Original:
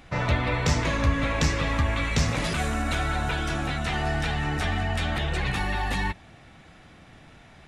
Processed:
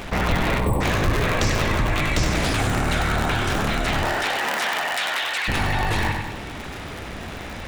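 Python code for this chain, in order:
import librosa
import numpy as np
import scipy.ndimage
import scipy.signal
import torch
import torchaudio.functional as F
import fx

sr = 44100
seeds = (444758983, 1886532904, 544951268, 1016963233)

y = fx.cycle_switch(x, sr, every=2, mode='inverted')
y = fx.spec_erase(y, sr, start_s=0.6, length_s=0.21, low_hz=1200.0, high_hz=7700.0)
y = fx.highpass(y, sr, hz=fx.line((4.04, 370.0), (5.47, 1300.0)), slope=12, at=(4.04, 5.47), fade=0.02)
y = fx.echo_feedback(y, sr, ms=96, feedback_pct=36, wet_db=-9)
y = fx.env_flatten(y, sr, amount_pct=50)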